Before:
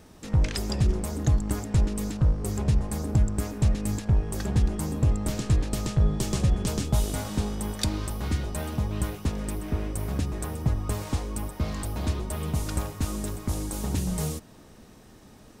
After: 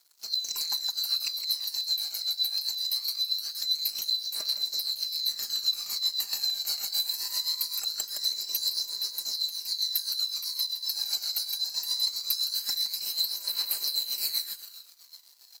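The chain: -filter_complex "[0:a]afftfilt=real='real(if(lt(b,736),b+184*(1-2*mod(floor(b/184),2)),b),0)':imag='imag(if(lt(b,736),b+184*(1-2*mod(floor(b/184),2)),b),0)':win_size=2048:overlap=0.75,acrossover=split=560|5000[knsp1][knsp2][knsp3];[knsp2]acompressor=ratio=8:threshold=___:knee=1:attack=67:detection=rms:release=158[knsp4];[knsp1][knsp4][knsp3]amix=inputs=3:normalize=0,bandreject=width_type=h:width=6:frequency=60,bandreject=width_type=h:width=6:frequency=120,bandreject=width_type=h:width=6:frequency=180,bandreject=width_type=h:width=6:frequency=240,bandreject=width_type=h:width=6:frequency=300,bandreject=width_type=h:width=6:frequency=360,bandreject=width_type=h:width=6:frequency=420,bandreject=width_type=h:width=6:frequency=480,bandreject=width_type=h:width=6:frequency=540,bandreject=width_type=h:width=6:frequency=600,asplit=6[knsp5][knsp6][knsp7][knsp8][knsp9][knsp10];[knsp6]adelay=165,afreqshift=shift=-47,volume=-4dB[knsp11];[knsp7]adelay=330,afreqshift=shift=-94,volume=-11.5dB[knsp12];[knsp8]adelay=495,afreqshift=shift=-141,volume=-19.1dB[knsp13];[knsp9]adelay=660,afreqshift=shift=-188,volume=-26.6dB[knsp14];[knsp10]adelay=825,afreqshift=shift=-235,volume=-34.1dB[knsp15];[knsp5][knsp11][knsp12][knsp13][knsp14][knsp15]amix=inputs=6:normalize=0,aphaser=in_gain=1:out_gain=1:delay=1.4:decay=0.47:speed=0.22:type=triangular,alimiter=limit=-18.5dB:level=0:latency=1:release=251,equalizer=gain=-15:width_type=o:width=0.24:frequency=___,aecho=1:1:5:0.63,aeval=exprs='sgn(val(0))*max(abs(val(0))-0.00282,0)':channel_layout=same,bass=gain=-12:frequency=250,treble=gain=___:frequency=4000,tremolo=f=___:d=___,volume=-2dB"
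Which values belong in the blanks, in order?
-33dB, 3500, 10, 7.7, 0.65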